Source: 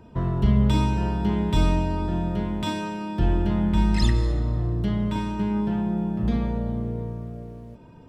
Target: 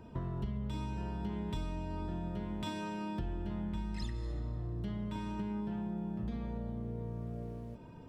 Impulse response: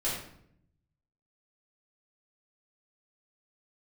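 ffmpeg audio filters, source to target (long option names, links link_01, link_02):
-af "acompressor=threshold=-32dB:ratio=6,volume=-3.5dB"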